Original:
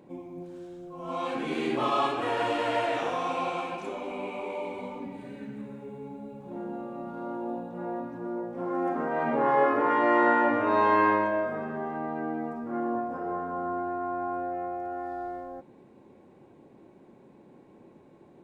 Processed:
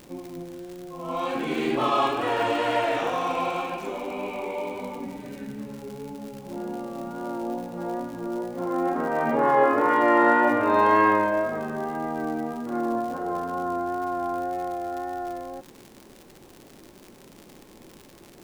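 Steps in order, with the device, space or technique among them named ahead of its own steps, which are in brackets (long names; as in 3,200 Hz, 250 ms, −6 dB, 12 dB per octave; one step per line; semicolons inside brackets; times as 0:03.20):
vinyl LP (tape wow and flutter 21 cents; surface crackle 110 per second −37 dBFS; pink noise bed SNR 31 dB)
level +3.5 dB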